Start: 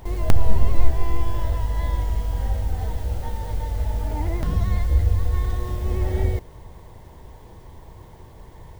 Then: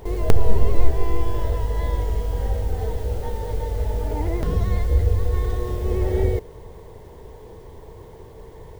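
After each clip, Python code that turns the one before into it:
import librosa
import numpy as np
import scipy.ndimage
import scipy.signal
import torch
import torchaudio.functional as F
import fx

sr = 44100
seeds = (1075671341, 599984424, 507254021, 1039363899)

y = fx.peak_eq(x, sr, hz=440.0, db=12.5, octaves=0.47)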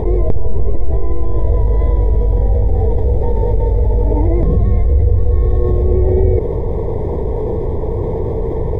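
y = np.convolve(x, np.full(31, 1.0 / 31))[:len(x)]
y = fx.env_flatten(y, sr, amount_pct=70)
y = y * librosa.db_to_amplitude(-1.5)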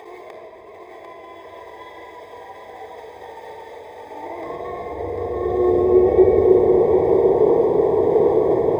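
y = fx.filter_sweep_highpass(x, sr, from_hz=1600.0, to_hz=390.0, start_s=4.04, end_s=5.46, q=0.85)
y = y + 10.0 ** (-5.5 / 20.0) * np.pad(y, (int(746 * sr / 1000.0), 0))[:len(y)]
y = fx.room_shoebox(y, sr, seeds[0], volume_m3=3900.0, walls='mixed', distance_m=3.5)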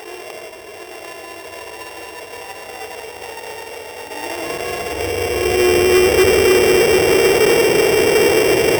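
y = np.r_[np.sort(x[:len(x) // 16 * 16].reshape(-1, 16), axis=1).ravel(), x[len(x) // 16 * 16:]]
y = 10.0 ** (-14.0 / 20.0) * np.tanh(y / 10.0 ** (-14.0 / 20.0))
y = y * librosa.db_to_amplitude(6.0)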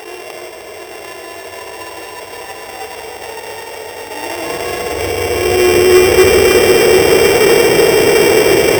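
y = x + 10.0 ** (-6.5 / 20.0) * np.pad(x, (int(306 * sr / 1000.0), 0))[:len(x)]
y = y * librosa.db_to_amplitude(3.5)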